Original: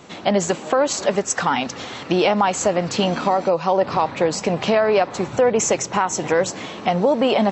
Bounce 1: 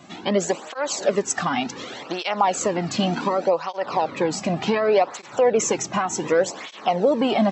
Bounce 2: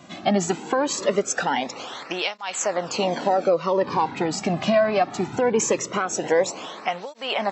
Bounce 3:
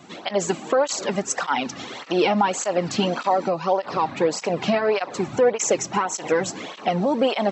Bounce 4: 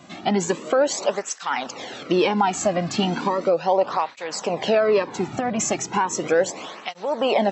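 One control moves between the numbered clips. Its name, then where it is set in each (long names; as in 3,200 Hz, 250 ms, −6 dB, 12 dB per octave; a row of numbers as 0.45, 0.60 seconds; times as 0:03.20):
through-zero flanger with one copy inverted, nulls at: 0.67, 0.21, 1.7, 0.36 Hertz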